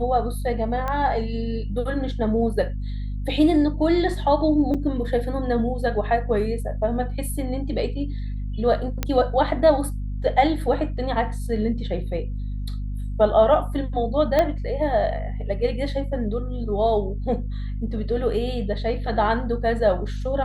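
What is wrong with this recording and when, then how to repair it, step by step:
hum 50 Hz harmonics 5 -28 dBFS
0.88 s: pop -15 dBFS
4.74–4.75 s: dropout 6.1 ms
9.03 s: pop -9 dBFS
14.39 s: pop -8 dBFS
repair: de-click; de-hum 50 Hz, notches 5; interpolate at 4.74 s, 6.1 ms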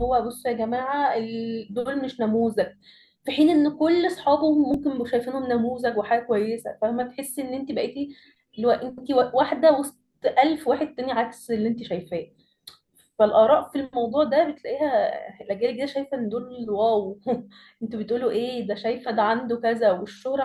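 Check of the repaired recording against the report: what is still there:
0.88 s: pop
14.39 s: pop

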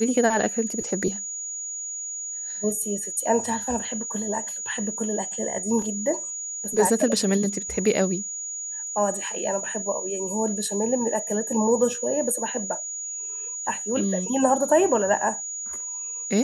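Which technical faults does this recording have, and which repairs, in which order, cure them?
whine 6.8 kHz -30 dBFS
5.82 s: dropout 2.4 ms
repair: band-stop 6.8 kHz, Q 30; interpolate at 5.82 s, 2.4 ms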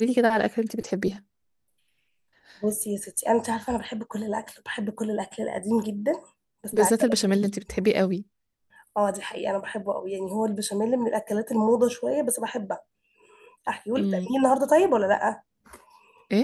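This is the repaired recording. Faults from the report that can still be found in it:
nothing left

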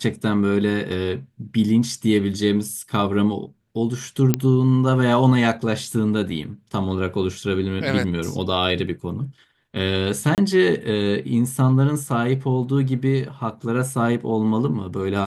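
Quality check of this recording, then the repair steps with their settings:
4.34 s: pop -3 dBFS
10.35–10.38 s: dropout 28 ms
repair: de-click; interpolate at 10.35 s, 28 ms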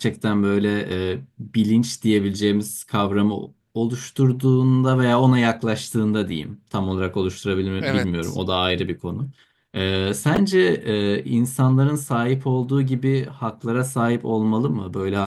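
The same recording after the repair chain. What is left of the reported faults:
nothing left

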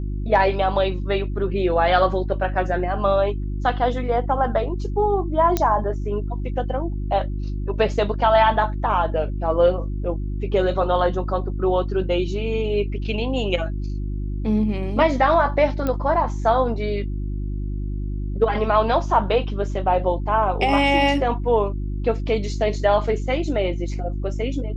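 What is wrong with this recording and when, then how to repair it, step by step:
hum 50 Hz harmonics 7 -26 dBFS
5.57 s: pop -6 dBFS
15.87 s: pop -12 dBFS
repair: de-click; de-hum 50 Hz, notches 7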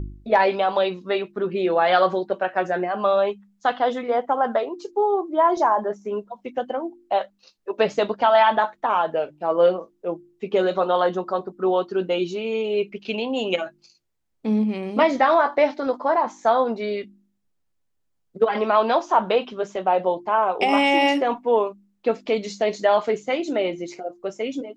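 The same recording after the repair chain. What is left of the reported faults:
nothing left

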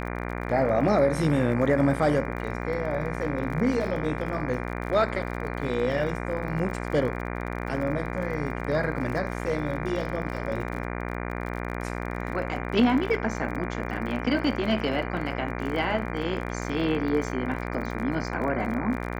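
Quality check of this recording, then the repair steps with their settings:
buzz 60 Hz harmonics 40 -32 dBFS
crackle 37 per s -34 dBFS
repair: de-click; de-hum 60 Hz, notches 40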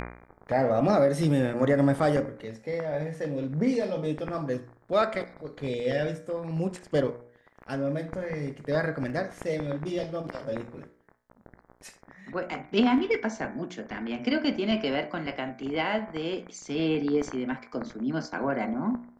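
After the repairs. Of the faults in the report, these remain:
nothing left

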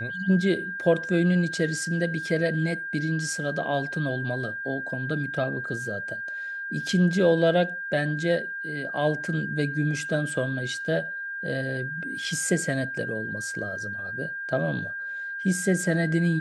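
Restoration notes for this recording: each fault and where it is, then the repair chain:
whine 1.6 kHz -31 dBFS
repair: band-stop 1.6 kHz, Q 30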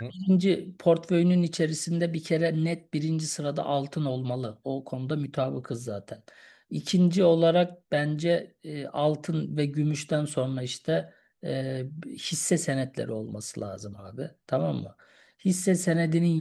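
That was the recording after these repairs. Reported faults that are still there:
nothing left

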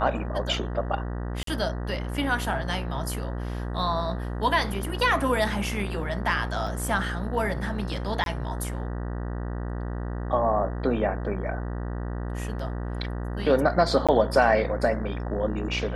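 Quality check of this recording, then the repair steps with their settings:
buzz 60 Hz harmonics 32 -31 dBFS
1.43–1.47 s: dropout 43 ms
6.67 s: dropout 2.3 ms
8.24–8.26 s: dropout 22 ms
14.07–14.09 s: dropout 16 ms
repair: de-hum 60 Hz, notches 32; interpolate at 1.43 s, 43 ms; interpolate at 6.67 s, 2.3 ms; interpolate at 8.24 s, 22 ms; interpolate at 14.07 s, 16 ms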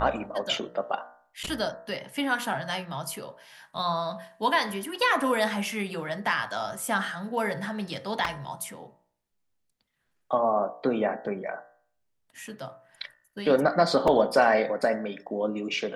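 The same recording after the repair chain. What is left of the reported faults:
nothing left

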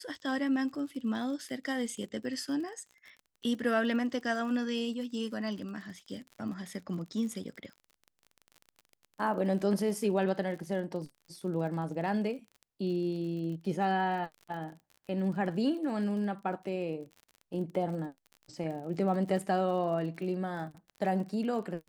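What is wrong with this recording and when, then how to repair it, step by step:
crackle 41 per s -41 dBFS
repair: de-click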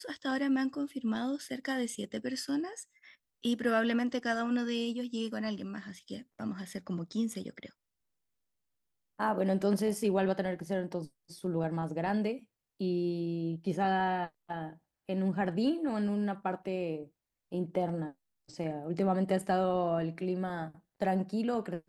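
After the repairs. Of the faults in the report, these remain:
nothing left

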